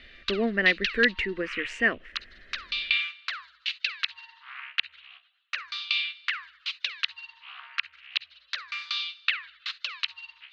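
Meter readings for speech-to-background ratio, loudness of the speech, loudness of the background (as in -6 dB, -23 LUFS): 5.5 dB, -26.0 LUFS, -31.5 LUFS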